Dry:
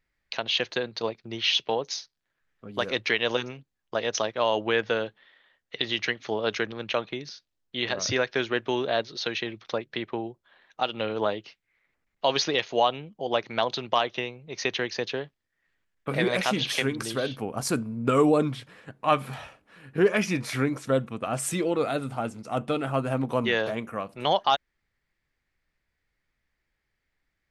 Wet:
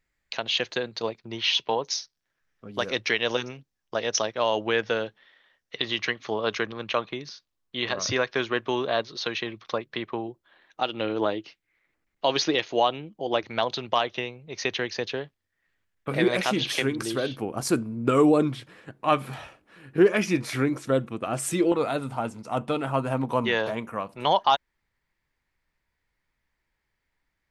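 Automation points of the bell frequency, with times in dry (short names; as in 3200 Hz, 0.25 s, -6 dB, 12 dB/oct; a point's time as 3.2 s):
bell +8 dB 0.26 oct
7300 Hz
from 1.19 s 970 Hz
from 1.9 s 5600 Hz
from 5.76 s 1100 Hz
from 10.28 s 320 Hz
from 13.43 s 92 Hz
from 16.15 s 340 Hz
from 21.72 s 950 Hz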